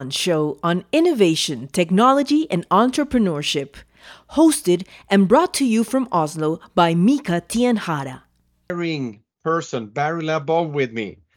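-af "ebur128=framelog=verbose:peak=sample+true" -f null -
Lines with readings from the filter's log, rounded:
Integrated loudness:
  I:         -19.3 LUFS
  Threshold: -29.7 LUFS
Loudness range:
  LRA:         5.7 LU
  Threshold: -39.5 LUFS
  LRA low:   -23.7 LUFS
  LRA high:  -18.0 LUFS
Sample peak:
  Peak:       -2.2 dBFS
True peak:
  Peak:       -2.2 dBFS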